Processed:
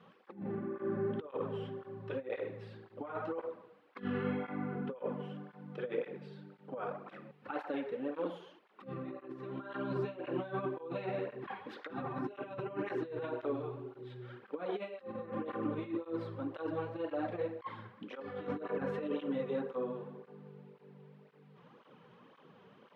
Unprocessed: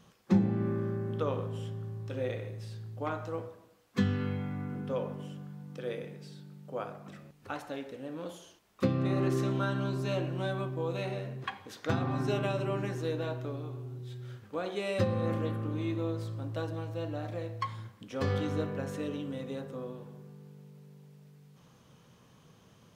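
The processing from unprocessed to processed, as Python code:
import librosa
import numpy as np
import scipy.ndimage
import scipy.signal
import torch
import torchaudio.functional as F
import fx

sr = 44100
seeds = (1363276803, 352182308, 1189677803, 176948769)

y = scipy.signal.sosfilt(scipy.signal.butter(2, 300.0, 'highpass', fs=sr, output='sos'), x)
y = fx.notch(y, sr, hz=670.0, q=12.0)
y = fx.over_compress(y, sr, threshold_db=-39.0, ratio=-0.5)
y = fx.air_absorb(y, sr, metres=460.0)
y = fx.flanger_cancel(y, sr, hz=1.9, depth_ms=3.9)
y = y * librosa.db_to_amplitude(6.0)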